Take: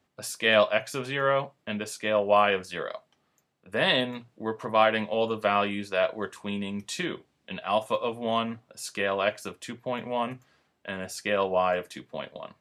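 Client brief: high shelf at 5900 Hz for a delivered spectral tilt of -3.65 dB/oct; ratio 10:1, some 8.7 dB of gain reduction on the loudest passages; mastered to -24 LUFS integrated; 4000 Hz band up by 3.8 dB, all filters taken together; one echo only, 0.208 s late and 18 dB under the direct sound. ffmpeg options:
-af "equalizer=f=4k:t=o:g=6.5,highshelf=f=5.9k:g=-4.5,acompressor=threshold=-24dB:ratio=10,aecho=1:1:208:0.126,volume=7.5dB"

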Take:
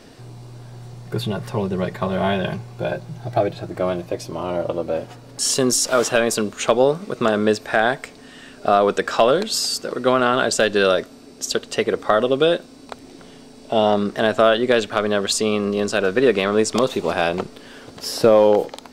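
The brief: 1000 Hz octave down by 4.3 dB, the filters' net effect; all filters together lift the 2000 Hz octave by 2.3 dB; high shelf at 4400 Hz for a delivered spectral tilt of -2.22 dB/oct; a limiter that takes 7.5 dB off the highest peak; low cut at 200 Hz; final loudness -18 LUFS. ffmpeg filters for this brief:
-af "highpass=200,equalizer=f=1k:t=o:g=-9,equalizer=f=2k:t=o:g=5.5,highshelf=f=4.4k:g=8,volume=4dB,alimiter=limit=-5.5dB:level=0:latency=1"

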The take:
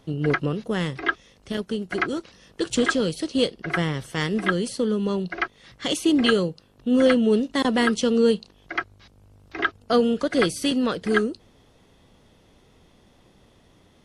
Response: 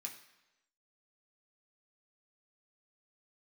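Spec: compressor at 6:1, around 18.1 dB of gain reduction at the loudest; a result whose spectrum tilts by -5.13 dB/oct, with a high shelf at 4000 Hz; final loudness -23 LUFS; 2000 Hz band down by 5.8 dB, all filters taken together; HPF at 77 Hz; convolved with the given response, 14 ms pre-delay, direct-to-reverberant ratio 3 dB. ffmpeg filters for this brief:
-filter_complex "[0:a]highpass=77,equalizer=f=2k:t=o:g=-7,highshelf=f=4k:g=-3,acompressor=threshold=-35dB:ratio=6,asplit=2[a][b];[1:a]atrim=start_sample=2205,adelay=14[c];[b][c]afir=irnorm=-1:irlink=0,volume=0.5dB[d];[a][d]amix=inputs=2:normalize=0,volume=14.5dB"

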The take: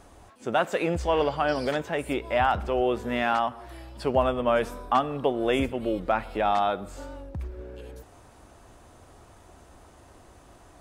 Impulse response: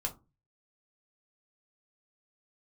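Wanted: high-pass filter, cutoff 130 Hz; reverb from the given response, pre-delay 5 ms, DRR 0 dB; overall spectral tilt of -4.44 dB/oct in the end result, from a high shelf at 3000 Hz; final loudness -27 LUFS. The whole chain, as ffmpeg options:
-filter_complex "[0:a]highpass=130,highshelf=f=3k:g=-8.5,asplit=2[a][b];[1:a]atrim=start_sample=2205,adelay=5[c];[b][c]afir=irnorm=-1:irlink=0,volume=-2dB[d];[a][d]amix=inputs=2:normalize=0,volume=-3.5dB"

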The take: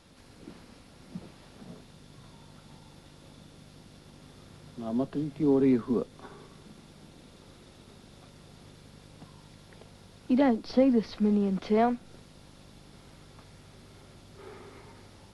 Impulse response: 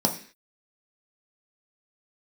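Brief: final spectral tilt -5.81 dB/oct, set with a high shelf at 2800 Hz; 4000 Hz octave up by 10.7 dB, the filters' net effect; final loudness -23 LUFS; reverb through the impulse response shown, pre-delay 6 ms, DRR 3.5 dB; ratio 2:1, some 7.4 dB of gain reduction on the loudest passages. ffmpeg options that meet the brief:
-filter_complex "[0:a]highshelf=f=2.8k:g=8,equalizer=f=4k:t=o:g=6.5,acompressor=threshold=-31dB:ratio=2,asplit=2[a][b];[1:a]atrim=start_sample=2205,adelay=6[c];[b][c]afir=irnorm=-1:irlink=0,volume=-15dB[d];[a][d]amix=inputs=2:normalize=0,volume=5dB"

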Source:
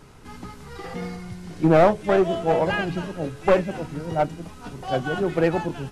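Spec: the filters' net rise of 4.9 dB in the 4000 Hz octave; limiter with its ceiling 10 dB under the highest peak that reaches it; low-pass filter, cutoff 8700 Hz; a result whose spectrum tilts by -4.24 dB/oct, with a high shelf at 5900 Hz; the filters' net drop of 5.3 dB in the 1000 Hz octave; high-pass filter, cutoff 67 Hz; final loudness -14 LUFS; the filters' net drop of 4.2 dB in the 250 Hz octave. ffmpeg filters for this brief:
-af "highpass=67,lowpass=8.7k,equalizer=f=250:t=o:g=-6.5,equalizer=f=1k:t=o:g=-8,equalizer=f=4k:t=o:g=5,highshelf=f=5.9k:g=8.5,volume=16dB,alimiter=limit=-1dB:level=0:latency=1"

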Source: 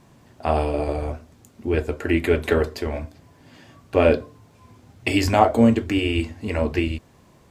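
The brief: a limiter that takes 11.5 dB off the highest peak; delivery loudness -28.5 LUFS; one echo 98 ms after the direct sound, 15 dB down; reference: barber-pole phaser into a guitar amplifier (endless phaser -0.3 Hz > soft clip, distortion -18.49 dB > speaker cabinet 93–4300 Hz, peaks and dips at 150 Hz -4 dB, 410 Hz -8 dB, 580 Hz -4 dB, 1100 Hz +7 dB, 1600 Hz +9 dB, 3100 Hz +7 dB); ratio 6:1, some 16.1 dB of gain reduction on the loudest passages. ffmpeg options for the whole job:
-filter_complex "[0:a]acompressor=threshold=-28dB:ratio=6,alimiter=level_in=1dB:limit=-24dB:level=0:latency=1,volume=-1dB,aecho=1:1:98:0.178,asplit=2[a][b];[b]afreqshift=-0.3[c];[a][c]amix=inputs=2:normalize=1,asoftclip=threshold=-30.5dB,highpass=93,equalizer=f=150:t=q:w=4:g=-4,equalizer=f=410:t=q:w=4:g=-8,equalizer=f=580:t=q:w=4:g=-4,equalizer=f=1.1k:t=q:w=4:g=7,equalizer=f=1.6k:t=q:w=4:g=9,equalizer=f=3.1k:t=q:w=4:g=7,lowpass=f=4.3k:w=0.5412,lowpass=f=4.3k:w=1.3066,volume=15dB"

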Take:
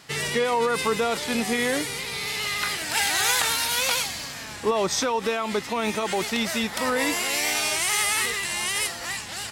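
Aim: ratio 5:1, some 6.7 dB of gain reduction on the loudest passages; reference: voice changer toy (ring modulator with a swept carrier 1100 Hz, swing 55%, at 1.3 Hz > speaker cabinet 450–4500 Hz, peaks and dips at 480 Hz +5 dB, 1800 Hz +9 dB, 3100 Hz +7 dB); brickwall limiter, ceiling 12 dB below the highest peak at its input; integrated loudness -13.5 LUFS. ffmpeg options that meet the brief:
-af "acompressor=threshold=-26dB:ratio=5,alimiter=level_in=3.5dB:limit=-24dB:level=0:latency=1,volume=-3.5dB,aeval=exprs='val(0)*sin(2*PI*1100*n/s+1100*0.55/1.3*sin(2*PI*1.3*n/s))':c=same,highpass=450,equalizer=f=480:t=q:w=4:g=5,equalizer=f=1.8k:t=q:w=4:g=9,equalizer=f=3.1k:t=q:w=4:g=7,lowpass=f=4.5k:w=0.5412,lowpass=f=4.5k:w=1.3066,volume=22dB"

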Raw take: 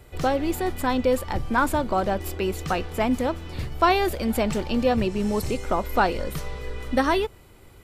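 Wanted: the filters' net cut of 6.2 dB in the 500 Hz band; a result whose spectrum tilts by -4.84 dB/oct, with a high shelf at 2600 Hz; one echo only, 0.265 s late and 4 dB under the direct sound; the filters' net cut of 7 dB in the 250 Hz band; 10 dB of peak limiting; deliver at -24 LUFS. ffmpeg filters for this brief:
-af "equalizer=f=250:t=o:g=-7,equalizer=f=500:t=o:g=-5.5,highshelf=f=2.6k:g=-6.5,alimiter=limit=-20dB:level=0:latency=1,aecho=1:1:265:0.631,volume=6.5dB"

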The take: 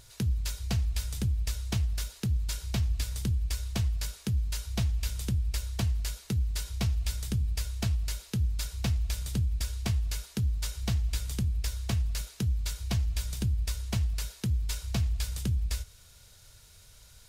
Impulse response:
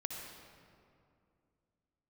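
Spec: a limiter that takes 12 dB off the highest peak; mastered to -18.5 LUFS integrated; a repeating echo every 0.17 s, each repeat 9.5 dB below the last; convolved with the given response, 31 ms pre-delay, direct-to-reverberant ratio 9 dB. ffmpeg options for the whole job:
-filter_complex "[0:a]alimiter=level_in=6dB:limit=-24dB:level=0:latency=1,volume=-6dB,aecho=1:1:170|340|510|680:0.335|0.111|0.0365|0.012,asplit=2[a][b];[1:a]atrim=start_sample=2205,adelay=31[c];[b][c]afir=irnorm=-1:irlink=0,volume=-9dB[d];[a][d]amix=inputs=2:normalize=0,volume=17dB"

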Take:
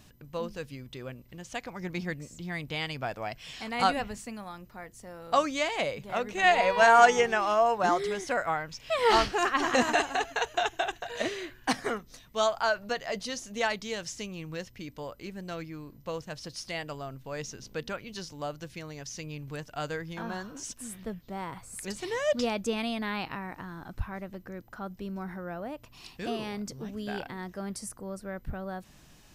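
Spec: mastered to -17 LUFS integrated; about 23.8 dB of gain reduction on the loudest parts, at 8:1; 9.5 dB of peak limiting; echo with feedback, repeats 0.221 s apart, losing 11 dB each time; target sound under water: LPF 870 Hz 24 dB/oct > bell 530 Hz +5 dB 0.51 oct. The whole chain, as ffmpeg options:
-af "acompressor=threshold=-39dB:ratio=8,alimiter=level_in=10.5dB:limit=-24dB:level=0:latency=1,volume=-10.5dB,lowpass=f=870:w=0.5412,lowpass=f=870:w=1.3066,equalizer=f=530:t=o:w=0.51:g=5,aecho=1:1:221|442|663:0.282|0.0789|0.0221,volume=28.5dB"

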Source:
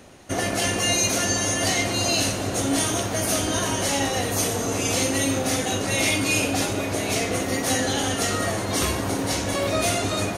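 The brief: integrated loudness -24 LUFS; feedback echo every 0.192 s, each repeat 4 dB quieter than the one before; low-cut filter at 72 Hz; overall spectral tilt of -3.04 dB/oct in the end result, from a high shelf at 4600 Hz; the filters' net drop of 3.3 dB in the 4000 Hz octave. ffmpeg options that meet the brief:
-af "highpass=72,equalizer=f=4k:t=o:g=-9,highshelf=f=4.6k:g=8,aecho=1:1:192|384|576|768|960|1152|1344|1536|1728:0.631|0.398|0.25|0.158|0.0994|0.0626|0.0394|0.0249|0.0157,volume=-4.5dB"

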